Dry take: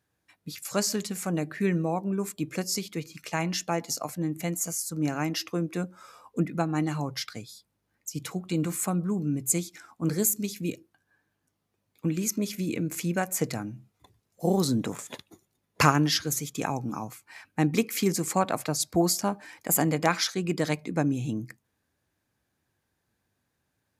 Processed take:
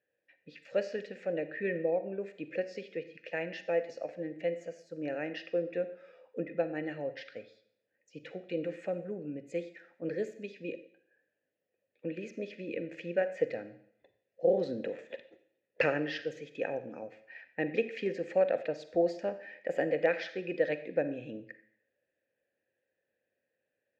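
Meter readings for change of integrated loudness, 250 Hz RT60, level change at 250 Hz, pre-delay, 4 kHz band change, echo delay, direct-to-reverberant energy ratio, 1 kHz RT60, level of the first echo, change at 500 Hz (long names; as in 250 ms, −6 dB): −6.5 dB, 0.60 s, −11.5 dB, 37 ms, −15.5 dB, no echo audible, 11.5 dB, 0.70 s, no echo audible, +1.0 dB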